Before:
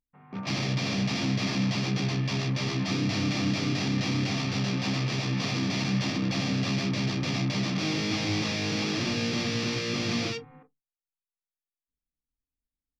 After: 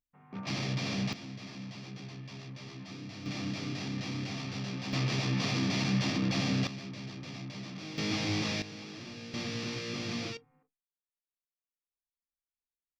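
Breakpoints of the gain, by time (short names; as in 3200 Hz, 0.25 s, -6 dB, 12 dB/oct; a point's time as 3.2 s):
-5 dB
from 1.13 s -16.5 dB
from 3.26 s -9 dB
from 4.93 s -2 dB
from 6.67 s -14 dB
from 7.98 s -3.5 dB
from 8.62 s -16 dB
from 9.34 s -7.5 dB
from 10.37 s -18 dB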